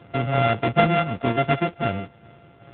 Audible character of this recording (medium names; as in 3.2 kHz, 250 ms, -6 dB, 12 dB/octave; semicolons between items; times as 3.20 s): a buzz of ramps at a fixed pitch in blocks of 64 samples; tremolo saw down 2.7 Hz, depth 35%; AMR-NB